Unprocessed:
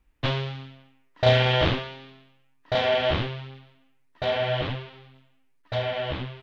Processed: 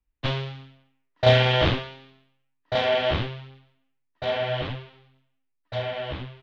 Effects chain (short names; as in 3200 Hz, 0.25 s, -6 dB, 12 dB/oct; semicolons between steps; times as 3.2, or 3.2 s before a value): three-band expander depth 40%; gain -1 dB